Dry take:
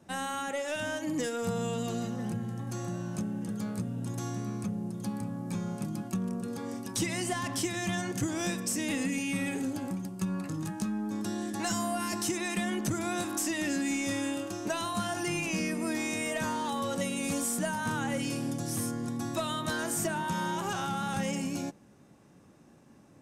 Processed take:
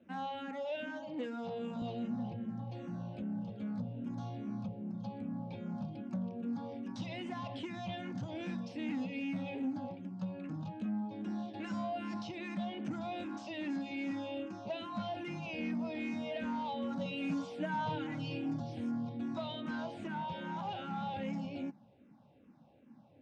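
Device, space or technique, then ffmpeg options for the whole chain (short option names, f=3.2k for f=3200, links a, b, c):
barber-pole phaser into a guitar amplifier: -filter_complex "[0:a]asplit=2[a][b];[b]afreqshift=-2.5[c];[a][c]amix=inputs=2:normalize=1,asoftclip=type=tanh:threshold=-30dB,highpass=76,equalizer=f=240:t=q:w=4:g=7,equalizer=f=380:t=q:w=4:g=-7,equalizer=f=550:t=q:w=4:g=4,equalizer=f=800:t=q:w=4:g=4,equalizer=f=1.2k:t=q:w=4:g=-6,equalizer=f=1.8k:t=q:w=4:g=-7,lowpass=f=3.8k:w=0.5412,lowpass=f=3.8k:w=1.3066,asettb=1/sr,asplit=3[d][e][f];[d]atrim=end=0.754[g];[e]atrim=start=0.75:end=1.82,asetpts=PTS-STARTPTS,afade=t=in:d=0.004:c=qsin,afade=t=out:st=1.066:d=0.004:c=qsin,highpass=200[h];[f]atrim=start=1.816[i];[g][h]acrossfade=d=0.004:c1=hsin:c2=qsin[j];[j][i]acrossfade=d=0.004:c1=qsin:c2=hsin,asettb=1/sr,asplit=3[k][l][m];[k]atrim=end=17.054[n];[l]atrim=start=17.05:end=18.6,asetpts=PTS-STARTPTS,afade=t=in:d=0.004:c=qsin,afade=t=out:st=1.546:d=0.004:c=qsin,aecho=1:1:6.5:0.9,atrim=end_sample=68355[o];[m]atrim=start=18.596[p];[n][o]acrossfade=d=0.004:c1=hsin:c2=qsin[q];[q][p]acrossfade=d=0.004:c1=qsin:c2=hsin,volume=-3dB"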